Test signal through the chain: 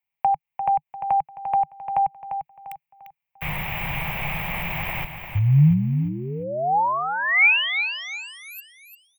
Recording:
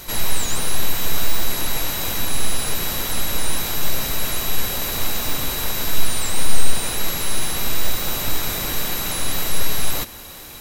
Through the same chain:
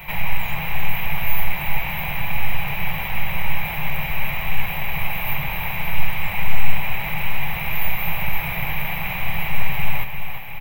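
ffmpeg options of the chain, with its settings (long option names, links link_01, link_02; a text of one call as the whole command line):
ffmpeg -i in.wav -filter_complex "[0:a]acrossover=split=140[link_01][link_02];[link_02]acompressor=threshold=-25dB:ratio=6[link_03];[link_01][link_03]amix=inputs=2:normalize=0,firequalizer=gain_entry='entry(110,0);entry(150,10);entry(240,-11);entry(420,-9);entry(820,8);entry(1400,-5);entry(2300,13);entry(4200,-18);entry(10000,-29);entry(15000,6)':delay=0.05:min_phase=1,aecho=1:1:347|694|1041|1388:0.376|0.135|0.0487|0.0175" out.wav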